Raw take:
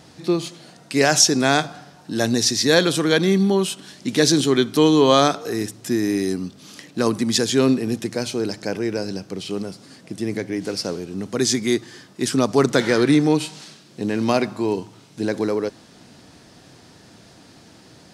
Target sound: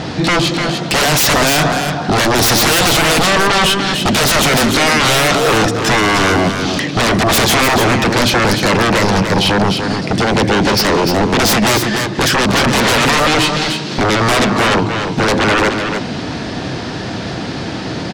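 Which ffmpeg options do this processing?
-filter_complex "[0:a]lowpass=3.9k,asplit=2[a][b];[b]acompressor=threshold=-30dB:ratio=6,volume=-1dB[c];[a][c]amix=inputs=2:normalize=0,alimiter=limit=-9.5dB:level=0:latency=1:release=88,aeval=exprs='0.335*sin(PI/2*6.31*val(0)/0.335)':c=same,asplit=2[d][e];[e]aecho=0:1:297:0.473[f];[d][f]amix=inputs=2:normalize=0"

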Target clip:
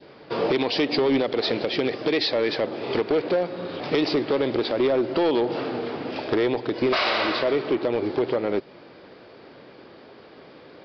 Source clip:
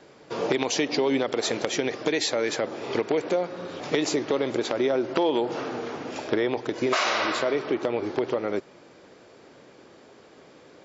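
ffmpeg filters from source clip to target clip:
-af "adynamicequalizer=threshold=0.00891:dfrequency=1300:dqfactor=0.9:tfrequency=1300:tqfactor=0.9:attack=5:release=100:ratio=0.375:range=2.5:mode=cutabove:tftype=bell,aresample=11025,asoftclip=type=hard:threshold=-21dB,aresample=44100,volume=4.5dB"

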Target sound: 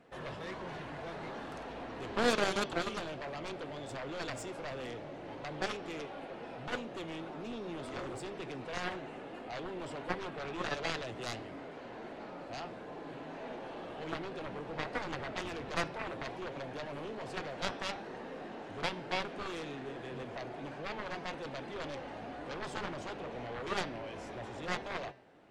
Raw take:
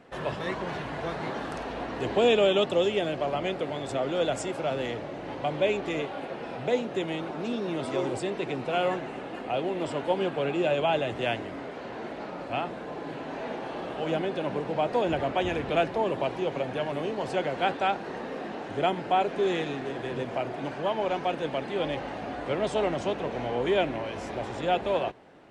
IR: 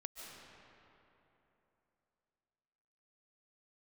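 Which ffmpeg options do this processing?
-af "flanger=delay=5.7:depth=4.9:regen=86:speed=1.2:shape=triangular,aeval=exprs='0.168*(cos(1*acos(clip(val(0)/0.168,-1,1)))-cos(1*PI/2))+0.0473*(cos(3*acos(clip(val(0)/0.168,-1,1)))-cos(3*PI/2))+0.00422*(cos(6*acos(clip(val(0)/0.168,-1,1)))-cos(6*PI/2))+0.0188*(cos(7*acos(clip(val(0)/0.168,-1,1)))-cos(7*PI/2))':c=same,bandreject=f=197.6:t=h:w=4,bandreject=f=395.2:t=h:w=4,bandreject=f=592.8:t=h:w=4,bandreject=f=790.4:t=h:w=4,bandreject=f=988:t=h:w=4,bandreject=f=1.1856k:t=h:w=4,bandreject=f=1.3832k:t=h:w=4,bandreject=f=1.5808k:t=h:w=4,bandreject=f=1.7784k:t=h:w=4,bandreject=f=1.976k:t=h:w=4,bandreject=f=2.1736k:t=h:w=4,bandreject=f=2.3712k:t=h:w=4,bandreject=f=2.5688k:t=h:w=4,bandreject=f=2.7664k:t=h:w=4,bandreject=f=2.964k:t=h:w=4,bandreject=f=3.1616k:t=h:w=4,bandreject=f=3.3592k:t=h:w=4,bandreject=f=3.5568k:t=h:w=4,bandreject=f=3.7544k:t=h:w=4,bandreject=f=3.952k:t=h:w=4,bandreject=f=4.1496k:t=h:w=4,bandreject=f=4.3472k:t=h:w=4,bandreject=f=4.5448k:t=h:w=4,bandreject=f=4.7424k:t=h:w=4,bandreject=f=4.94k:t=h:w=4,bandreject=f=5.1376k:t=h:w=4,bandreject=f=5.3352k:t=h:w=4,bandreject=f=5.5328k:t=h:w=4,bandreject=f=5.7304k:t=h:w=4,bandreject=f=5.928k:t=h:w=4,bandreject=f=6.1256k:t=h:w=4,volume=1dB"

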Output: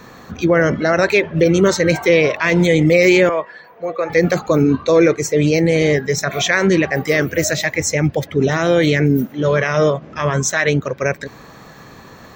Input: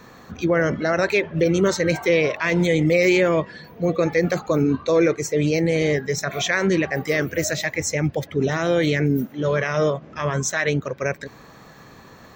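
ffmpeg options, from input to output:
-filter_complex "[0:a]asettb=1/sr,asplit=3[a][b][c];[a]atrim=end=3.294[d];[b]atrim=start=3.29:end=4.1,asetpts=PTS-STARTPTS,afade=t=in:d=0.004:c=qsin,afade=t=out:st=0.806:d=0.004:c=qsin,acrossover=split=500 2200:gain=0.0794 1 0.224[e][f][g];[e][f][g]amix=inputs=3:normalize=0[h];[c]atrim=start=4.096[i];[d][h]acrossfade=d=0.004:c1=hsin:c2=qsin[j];[j][i]acrossfade=d=0.004:c1=qsin:c2=hsin,volume=5.5dB"

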